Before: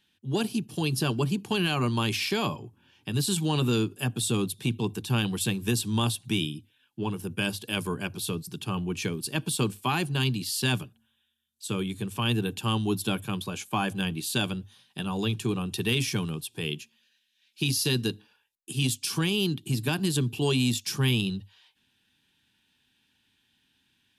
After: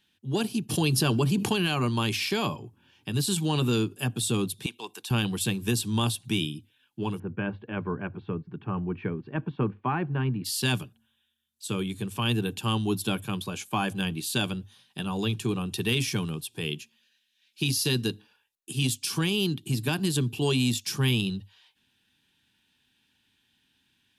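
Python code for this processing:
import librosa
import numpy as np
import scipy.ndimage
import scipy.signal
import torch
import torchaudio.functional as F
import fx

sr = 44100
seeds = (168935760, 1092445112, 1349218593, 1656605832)

y = fx.env_flatten(x, sr, amount_pct=70, at=(0.69, 1.52), fade=0.02)
y = fx.highpass(y, sr, hz=710.0, slope=12, at=(4.66, 5.11))
y = fx.cheby2_lowpass(y, sr, hz=7700.0, order=4, stop_db=70, at=(7.18, 10.44), fade=0.02)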